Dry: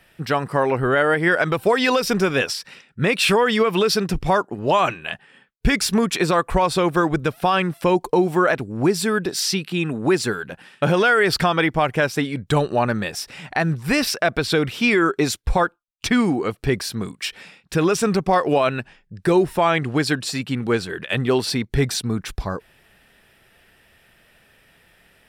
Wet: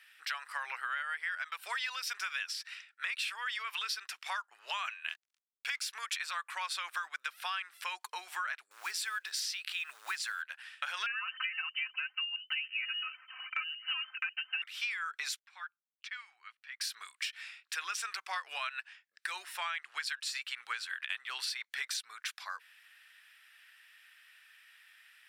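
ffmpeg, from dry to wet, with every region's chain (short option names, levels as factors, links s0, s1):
-filter_complex "[0:a]asettb=1/sr,asplit=3[s0][s1][s2];[s0]atrim=end=5.094[s3];[s1]atrim=start=5.09:end=5.87,asetpts=PTS-STARTPTS,afade=t=in:d=0.004:c=qsin,afade=t=out:st=0.776:d=0.004:c=qsin,aeval=exprs='sgn(val(0))*max(abs(val(0))-0.0075,0)':c=same,bandreject=f=1800:w=9.5[s4];[s2]atrim=start=5.866[s5];[s3][s4]acrossfade=d=0.004:c1=hsin:c2=qsin[s6];[s6][s5]acrossfade=d=0.004:c1=qsin:c2=hsin,asettb=1/sr,asplit=3[s7][s8][s9];[s7]atrim=end=8.714[s10];[s8]atrim=start=8.71:end=10.42,asetpts=PTS-STARTPTS,afade=t=in:d=0.004:c=qsin,afade=t=out:st=1.706:d=0.004:c=qsin,highpass=f=260:w=0.5412,highpass=f=260:w=1.3066,acompressor=mode=upward:threshold=0.0891:ratio=2.5:attack=3.2:release=140:knee=2.83:detection=peak,acrusher=bits=7:mode=log:mix=0:aa=0.000001[s11];[s9]atrim=start=10.416[s12];[s10][s11]acrossfade=d=0.004:c1=hsin:c2=qsin[s13];[s13][s12]acrossfade=d=0.004:c1=qsin:c2=hsin,asettb=1/sr,asplit=3[s14][s15][s16];[s14]atrim=end=11.064[s17];[s15]atrim=start=11.06:end=14.62,asetpts=PTS-STARTPTS,afade=t=in:d=0.004:c=qsin,afade=t=out:st=3.556:d=0.004:c=qsin,aecho=1:1:3.9:0.98,atrim=end_sample=156996,flanger=delay=0.1:depth=4.1:regen=46:speed=1.3:shape=triangular,lowpass=f=2600:t=q:w=0.5098,lowpass=f=2600:t=q:w=0.6013,lowpass=f=2600:t=q:w=0.9,lowpass=f=2600:t=q:w=2.563,afreqshift=-3100[s18];[s16]atrim=start=14.616[s19];[s17][s18]acrossfade=d=0.004:c1=hsin:c2=qsin[s20];[s20][s19]acrossfade=d=0.004:c1=qsin:c2=hsin,asettb=1/sr,asplit=3[s21][s22][s23];[s21]atrim=end=15.394[s24];[s22]atrim=start=15.39:end=16.81,asetpts=PTS-STARTPTS,afade=t=in:d=0.004:c=qsin,afade=t=out:st=1.416:d=0.004:c=qsin,lowpass=2000,aderivative[s25];[s23]atrim=start=16.806[s26];[s24][s25]acrossfade=d=0.004:c1=hsin:c2=qsin[s27];[s27][s26]acrossfade=d=0.004:c1=qsin:c2=hsin,highpass=f=1400:w=0.5412,highpass=f=1400:w=1.3066,highshelf=f=6000:g=-5.5,acompressor=threshold=0.0251:ratio=10,volume=0.841"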